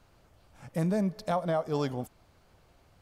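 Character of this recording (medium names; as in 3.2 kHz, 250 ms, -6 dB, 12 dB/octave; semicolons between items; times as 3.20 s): noise floor -63 dBFS; spectral tilt -6.0 dB/octave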